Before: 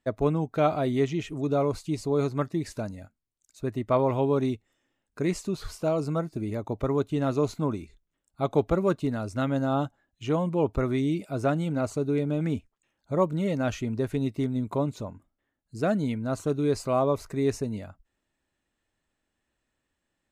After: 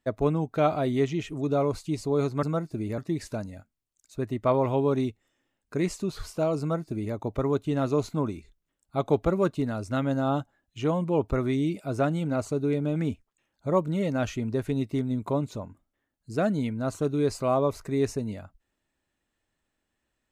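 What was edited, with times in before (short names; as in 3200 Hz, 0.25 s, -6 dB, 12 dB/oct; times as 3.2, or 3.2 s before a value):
6.05–6.6 copy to 2.43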